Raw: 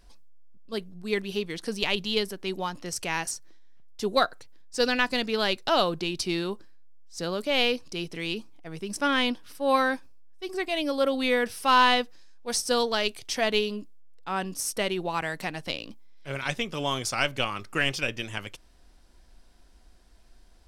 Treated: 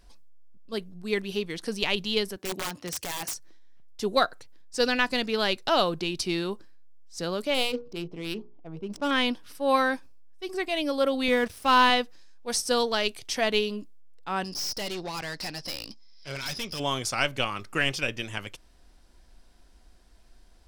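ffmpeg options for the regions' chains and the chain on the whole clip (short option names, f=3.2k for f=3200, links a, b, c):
-filter_complex "[0:a]asettb=1/sr,asplit=3[a][b][c];[a]atrim=end=2.364[d];[b]atrim=start=2.36:end=3.34,asetpts=PTS-STARTPTS,afade=t=in:d=0.004:c=qsin,afade=t=out:st=0.976:d=0.004:c=qsin,highpass=f=67:w=0.5412,highpass=f=67:w=1.3066,aeval=exprs='(mod(17.8*val(0)+1,2)-1)/17.8':c=same[e];[c]atrim=start=3.336[f];[d][e]acrossfade=d=0.004:c1=hsin:c2=qsin[g];[g][f]acrossfade=d=0.004:c1=qsin:c2=hsin,asettb=1/sr,asplit=3[h][i][j];[h]atrim=end=7.544[k];[i]atrim=start=7.54:end=9.11,asetpts=PTS-STARTPTS,afade=t=in:d=0.004:c=qsin,afade=t=out:st=1.566:d=0.004:c=qsin,equalizer=f=1.8k:t=o:w=0.68:g=-13.5,bandreject=f=60:t=h:w=6,bandreject=f=120:t=h:w=6,bandreject=f=180:t=h:w=6,bandreject=f=240:t=h:w=6,bandreject=f=300:t=h:w=6,bandreject=f=360:t=h:w=6,bandreject=f=420:t=h:w=6,bandreject=f=480:t=h:w=6,bandreject=f=540:t=h:w=6,adynamicsmooth=sensitivity=5.5:basefreq=1.3k[l];[j]atrim=start=9.106[m];[k][l]acrossfade=d=0.004:c1=hsin:c2=qsin[n];[n][m]acrossfade=d=0.004:c1=qsin:c2=hsin,asettb=1/sr,asplit=3[o][p][q];[o]atrim=end=11.284[r];[p]atrim=start=11.28:end=11.9,asetpts=PTS-STARTPTS,afade=t=in:d=0.004:c=qsin,afade=t=out:st=0.616:d=0.004:c=qsin,equalizer=f=60:w=0.51:g=15,aeval=exprs='sgn(val(0))*max(abs(val(0))-0.00891,0)':c=same[s];[q]atrim=start=11.896[t];[r][s]acrossfade=d=0.004:c1=hsin:c2=qsin[u];[u][t]acrossfade=d=0.004:c1=qsin:c2=hsin,asettb=1/sr,asplit=3[v][w][x];[v]atrim=end=14.444[y];[w]atrim=start=14.44:end=16.8,asetpts=PTS-STARTPTS,afade=t=in:d=0.004:c=qsin,afade=t=out:st=2.356:d=0.004:c=qsin,lowpass=f=5.1k:t=q:w=12,highshelf=f=3.3k:g=5,aeval=exprs='(tanh(31.6*val(0)+0.4)-tanh(0.4))/31.6':c=same[z];[x]atrim=start=16.796[aa];[y][z]acrossfade=d=0.004:c1=hsin:c2=qsin[ab];[ab][aa]acrossfade=d=0.004:c1=qsin:c2=hsin"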